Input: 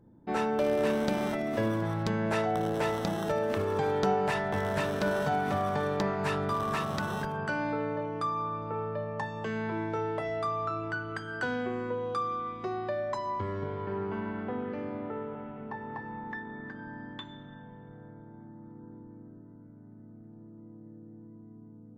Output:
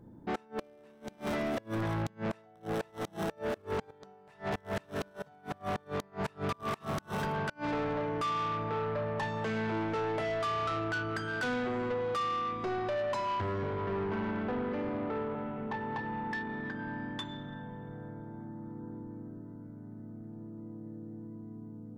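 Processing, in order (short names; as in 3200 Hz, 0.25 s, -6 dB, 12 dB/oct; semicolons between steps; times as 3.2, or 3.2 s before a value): flipped gate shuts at -20 dBFS, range -35 dB; soft clip -34.5 dBFS, distortion -9 dB; gain +5 dB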